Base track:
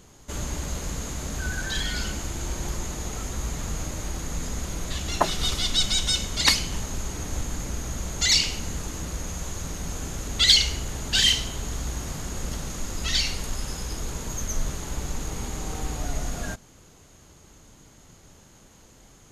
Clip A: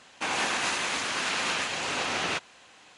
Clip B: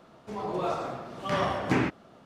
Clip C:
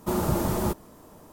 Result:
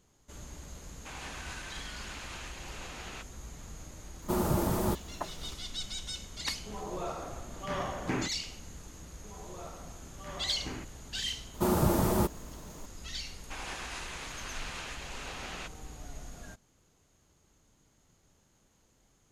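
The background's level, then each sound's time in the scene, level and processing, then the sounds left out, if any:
base track -15.5 dB
0.84 s: add A -16 dB
4.22 s: add C -3.5 dB
6.38 s: add B -7.5 dB
8.95 s: add B -16.5 dB
11.54 s: add C -1 dB
13.29 s: add A -13 dB

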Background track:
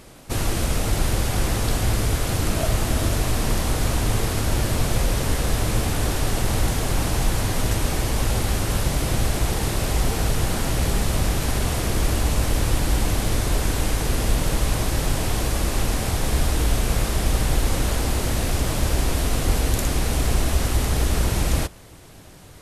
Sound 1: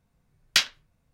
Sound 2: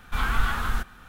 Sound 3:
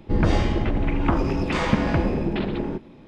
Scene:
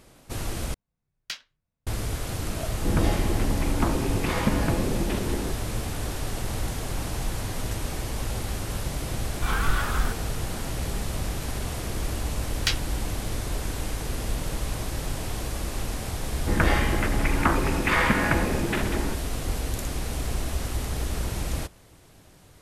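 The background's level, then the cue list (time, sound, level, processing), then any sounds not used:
background track -8 dB
0.74 s: replace with 1 -14.5 dB
2.74 s: add 3 -4 dB
9.30 s: add 2 -1 dB
12.11 s: add 1 -5 dB
16.37 s: add 3 -4.5 dB + peaking EQ 1.7 kHz +12.5 dB 1.6 oct

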